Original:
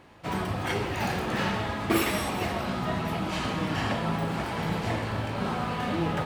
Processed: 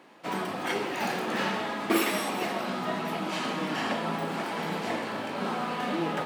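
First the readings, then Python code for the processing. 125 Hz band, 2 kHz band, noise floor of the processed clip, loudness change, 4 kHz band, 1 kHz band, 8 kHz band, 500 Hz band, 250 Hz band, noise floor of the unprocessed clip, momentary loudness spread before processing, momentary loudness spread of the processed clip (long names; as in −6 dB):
−10.0 dB, 0.0 dB, −35 dBFS, −1.0 dB, 0.0 dB, 0.0 dB, 0.0 dB, 0.0 dB, −1.5 dB, −33 dBFS, 4 LU, 5 LU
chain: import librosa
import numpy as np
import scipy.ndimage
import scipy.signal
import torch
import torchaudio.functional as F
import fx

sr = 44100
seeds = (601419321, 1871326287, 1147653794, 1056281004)

y = scipy.signal.sosfilt(scipy.signal.butter(4, 200.0, 'highpass', fs=sr, output='sos'), x)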